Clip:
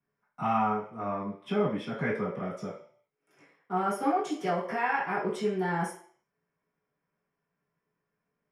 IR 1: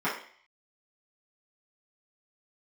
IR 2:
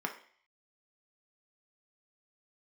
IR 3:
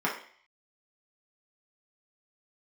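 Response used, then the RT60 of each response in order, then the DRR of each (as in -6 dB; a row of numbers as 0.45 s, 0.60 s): 1; 0.50 s, 0.50 s, 0.50 s; -11.0 dB, 2.5 dB, -5.0 dB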